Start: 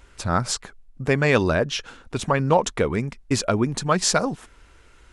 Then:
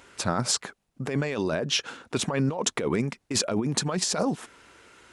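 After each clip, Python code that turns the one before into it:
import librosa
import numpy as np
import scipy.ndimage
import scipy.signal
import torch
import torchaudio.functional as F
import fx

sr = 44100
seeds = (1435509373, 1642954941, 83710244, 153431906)

y = scipy.signal.sosfilt(scipy.signal.butter(2, 170.0, 'highpass', fs=sr, output='sos'), x)
y = fx.dynamic_eq(y, sr, hz=1500.0, q=0.92, threshold_db=-32.0, ratio=4.0, max_db=-4)
y = fx.over_compress(y, sr, threshold_db=-26.0, ratio=-1.0)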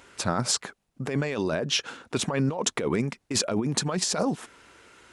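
y = x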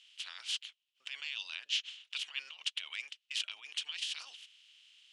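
y = fx.spec_clip(x, sr, under_db=20)
y = fx.ladder_bandpass(y, sr, hz=3200.0, resonance_pct=75)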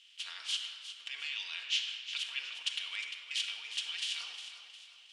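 y = fx.echo_feedback(x, sr, ms=357, feedback_pct=43, wet_db=-11.5)
y = fx.room_shoebox(y, sr, seeds[0], volume_m3=2400.0, walls='mixed', distance_m=1.7)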